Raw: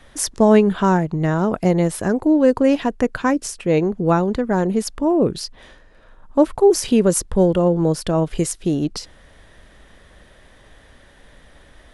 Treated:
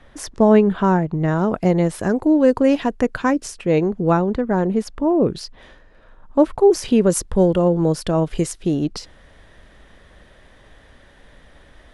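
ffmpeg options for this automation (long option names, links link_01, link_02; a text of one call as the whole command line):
ffmpeg -i in.wav -af "asetnsamples=nb_out_samples=441:pad=0,asendcmd='1.28 lowpass f 4800;1.99 lowpass f 10000;3.3 lowpass f 5500;4.17 lowpass f 2300;5.24 lowpass f 3900;7.1 lowpass f 9400;8.4 lowpass f 5600',lowpass=frequency=2200:poles=1" out.wav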